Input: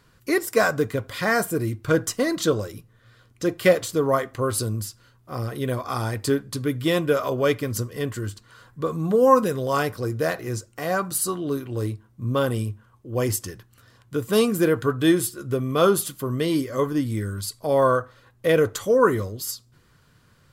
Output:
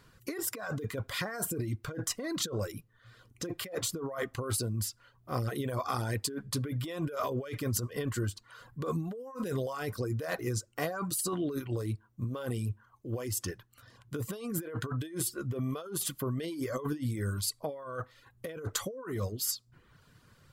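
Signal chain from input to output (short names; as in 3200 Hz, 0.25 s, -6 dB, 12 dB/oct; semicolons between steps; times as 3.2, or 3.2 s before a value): negative-ratio compressor -28 dBFS, ratio -1; reverb removal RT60 0.62 s; gain -6 dB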